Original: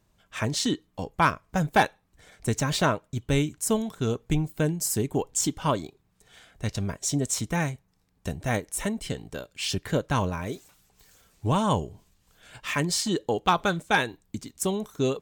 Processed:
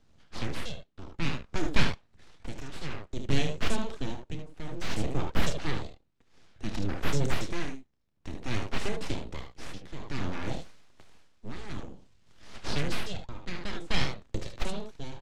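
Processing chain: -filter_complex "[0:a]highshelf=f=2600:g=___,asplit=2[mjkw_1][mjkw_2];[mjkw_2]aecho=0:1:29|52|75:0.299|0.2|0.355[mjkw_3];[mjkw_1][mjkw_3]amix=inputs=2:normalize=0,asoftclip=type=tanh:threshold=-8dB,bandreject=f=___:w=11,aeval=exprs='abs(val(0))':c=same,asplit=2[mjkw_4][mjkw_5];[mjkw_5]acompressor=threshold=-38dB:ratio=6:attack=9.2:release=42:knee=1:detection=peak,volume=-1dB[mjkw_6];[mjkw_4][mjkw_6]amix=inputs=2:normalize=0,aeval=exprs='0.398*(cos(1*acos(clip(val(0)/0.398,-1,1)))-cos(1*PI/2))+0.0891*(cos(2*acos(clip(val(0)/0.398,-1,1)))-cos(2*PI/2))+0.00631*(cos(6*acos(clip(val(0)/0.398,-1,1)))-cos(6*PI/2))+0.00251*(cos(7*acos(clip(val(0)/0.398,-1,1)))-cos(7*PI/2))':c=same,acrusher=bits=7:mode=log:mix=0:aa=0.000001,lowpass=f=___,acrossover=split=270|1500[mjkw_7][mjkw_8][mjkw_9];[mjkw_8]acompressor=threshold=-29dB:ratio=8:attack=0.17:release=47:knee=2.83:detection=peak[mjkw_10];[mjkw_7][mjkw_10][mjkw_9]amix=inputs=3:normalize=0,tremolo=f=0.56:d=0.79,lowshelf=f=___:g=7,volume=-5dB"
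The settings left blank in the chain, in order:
7, 950, 4900, 420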